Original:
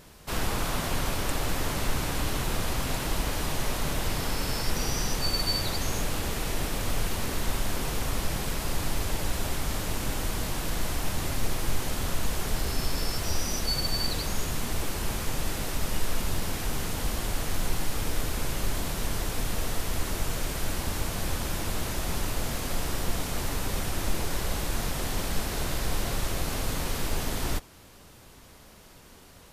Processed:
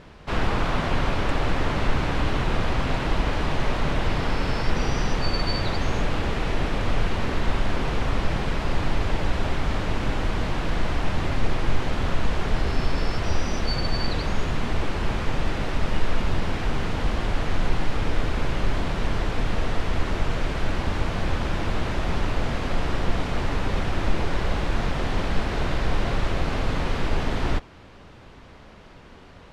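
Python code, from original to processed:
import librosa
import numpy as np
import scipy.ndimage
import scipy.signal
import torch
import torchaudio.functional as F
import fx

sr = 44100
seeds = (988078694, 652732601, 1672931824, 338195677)

y = scipy.signal.sosfilt(scipy.signal.butter(2, 2900.0, 'lowpass', fs=sr, output='sos'), x)
y = y * 10.0 ** (6.0 / 20.0)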